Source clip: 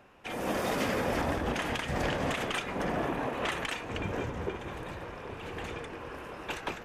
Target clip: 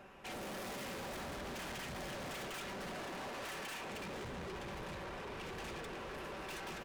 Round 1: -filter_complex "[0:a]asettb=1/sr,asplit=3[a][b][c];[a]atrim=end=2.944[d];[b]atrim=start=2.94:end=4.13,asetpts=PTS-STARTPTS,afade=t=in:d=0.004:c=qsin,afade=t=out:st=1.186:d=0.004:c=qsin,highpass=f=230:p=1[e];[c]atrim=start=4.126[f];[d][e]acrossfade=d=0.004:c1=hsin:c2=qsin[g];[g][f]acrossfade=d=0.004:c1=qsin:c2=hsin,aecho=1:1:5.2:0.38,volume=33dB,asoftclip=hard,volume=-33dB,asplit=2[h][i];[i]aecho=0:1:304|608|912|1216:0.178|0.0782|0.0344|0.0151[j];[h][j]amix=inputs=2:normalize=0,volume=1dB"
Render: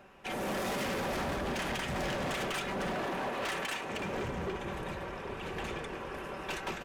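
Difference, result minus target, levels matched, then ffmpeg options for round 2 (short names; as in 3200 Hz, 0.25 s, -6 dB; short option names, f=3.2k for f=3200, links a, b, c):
overloaded stage: distortion -5 dB
-filter_complex "[0:a]asettb=1/sr,asplit=3[a][b][c];[a]atrim=end=2.944[d];[b]atrim=start=2.94:end=4.13,asetpts=PTS-STARTPTS,afade=t=in:d=0.004:c=qsin,afade=t=out:st=1.186:d=0.004:c=qsin,highpass=f=230:p=1[e];[c]atrim=start=4.126[f];[d][e]acrossfade=d=0.004:c1=hsin:c2=qsin[g];[g][f]acrossfade=d=0.004:c1=qsin:c2=hsin,aecho=1:1:5.2:0.38,volume=44.5dB,asoftclip=hard,volume=-44.5dB,asplit=2[h][i];[i]aecho=0:1:304|608|912|1216:0.178|0.0782|0.0344|0.0151[j];[h][j]amix=inputs=2:normalize=0,volume=1dB"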